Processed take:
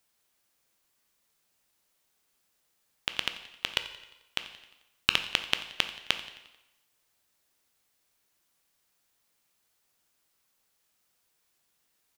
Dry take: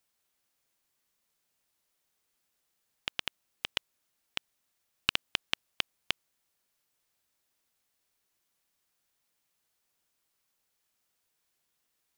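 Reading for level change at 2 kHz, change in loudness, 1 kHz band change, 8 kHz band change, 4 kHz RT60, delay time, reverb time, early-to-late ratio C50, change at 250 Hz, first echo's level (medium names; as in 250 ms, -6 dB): +4.5 dB, +4.5 dB, +4.5 dB, +4.5 dB, 0.90 s, 88 ms, 1.0 s, 10.5 dB, +4.5 dB, -18.0 dB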